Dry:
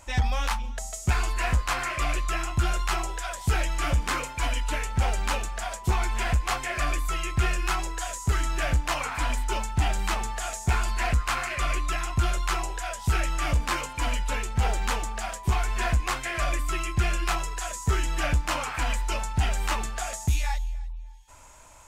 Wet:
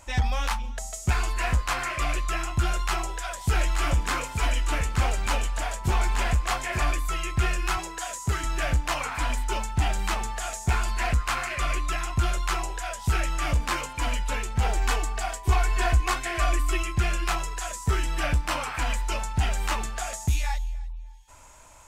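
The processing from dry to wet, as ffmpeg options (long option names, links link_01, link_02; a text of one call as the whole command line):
ffmpeg -i in.wav -filter_complex "[0:a]asettb=1/sr,asplit=3[link_01][link_02][link_03];[link_01]atrim=end=2.674[link_04];[link_02]atrim=start=2.67:end=6.91,asetpts=PTS-STARTPTS,afade=type=in:duration=0.004:curve=qsin,afade=type=out:start_time=4.236:duration=0.004:curve=qsin,aecho=1:1:878:0.473,atrim=end_sample=186984[link_05];[link_03]atrim=start=6.906[link_06];[link_04][link_05]acrossfade=duration=0.004:curve1=hsin:curve2=qsin[link_07];[link_07][link_06]acrossfade=duration=0.004:curve1=qsin:curve2=hsin,asettb=1/sr,asplit=3[link_08][link_09][link_10];[link_08]atrim=end=7.774[link_11];[link_09]atrim=start=7.77:end=8.44,asetpts=PTS-STARTPTS,afade=type=in:duration=0.004:curve=qsin,afade=type=out:start_time=0.666:duration=0.004:curve=qsin,highpass=frequency=63:width=0.5412,highpass=frequency=63:width=1.3066[link_12];[link_10]atrim=start=8.436[link_13];[link_11][link_12]acrossfade=duration=0.004:curve1=hsin:curve2=qsin[link_14];[link_14][link_13]acrossfade=duration=0.004:curve1=qsin:curve2=hsin,asettb=1/sr,asplit=3[link_15][link_16][link_17];[link_15]atrim=end=14.754[link_18];[link_16]atrim=start=14.75:end=16.83,asetpts=PTS-STARTPTS,afade=type=in:duration=0.004:curve=qsin,afade=type=out:start_time=2.076:duration=0.004:curve=qsin,aecho=1:1:2.7:0.65,atrim=end_sample=91728[link_19];[link_17]atrim=start=16.826[link_20];[link_18][link_19]acrossfade=duration=0.004:curve1=hsin:curve2=qsin[link_21];[link_21][link_20]acrossfade=duration=0.004:curve1=qsin:curve2=hsin,asettb=1/sr,asplit=3[link_22][link_23][link_24];[link_22]atrim=end=17.764[link_25];[link_23]atrim=start=17.76:end=18.77,asetpts=PTS-STARTPTS,afade=type=in:duration=0.004:curve=qsin,afade=type=out:start_time=1.006:duration=0.004:curve=qsin,bandreject=frequency=6800:width=12[link_26];[link_24]atrim=start=18.766[link_27];[link_25][link_26]acrossfade=duration=0.004:curve1=hsin:curve2=qsin[link_28];[link_28][link_27]acrossfade=duration=0.004:curve1=qsin:curve2=hsin" out.wav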